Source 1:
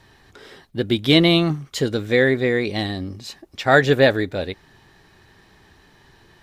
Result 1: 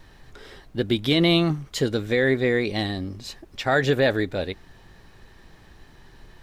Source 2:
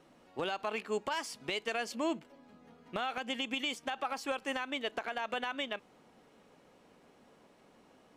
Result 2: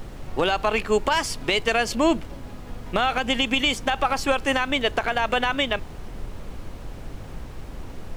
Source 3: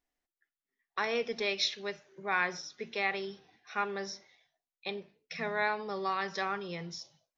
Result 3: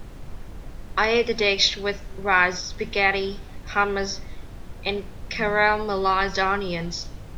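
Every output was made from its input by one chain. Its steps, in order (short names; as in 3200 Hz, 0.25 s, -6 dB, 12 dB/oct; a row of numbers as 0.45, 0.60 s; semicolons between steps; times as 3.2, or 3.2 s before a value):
added noise brown -47 dBFS; maximiser +7 dB; match loudness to -23 LUFS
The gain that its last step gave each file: -8.5, +6.5, +4.5 dB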